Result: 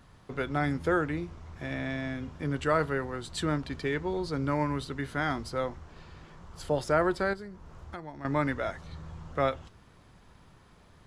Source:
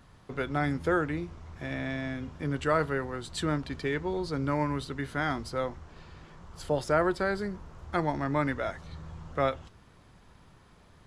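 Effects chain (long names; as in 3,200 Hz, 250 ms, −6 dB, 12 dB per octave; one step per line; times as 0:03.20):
0:07.33–0:08.25: downward compressor 4 to 1, threshold −41 dBFS, peak gain reduction 15 dB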